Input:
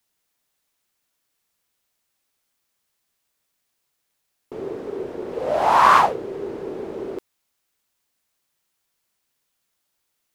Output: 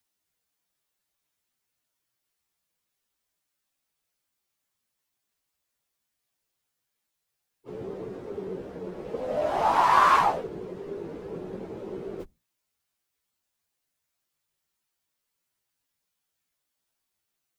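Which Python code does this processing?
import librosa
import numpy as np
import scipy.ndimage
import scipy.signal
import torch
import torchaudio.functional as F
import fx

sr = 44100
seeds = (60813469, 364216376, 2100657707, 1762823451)

y = fx.octave_divider(x, sr, octaves=1, level_db=-3.0)
y = fx.stretch_vocoder_free(y, sr, factor=1.7)
y = y * librosa.db_to_amplitude(-4.0)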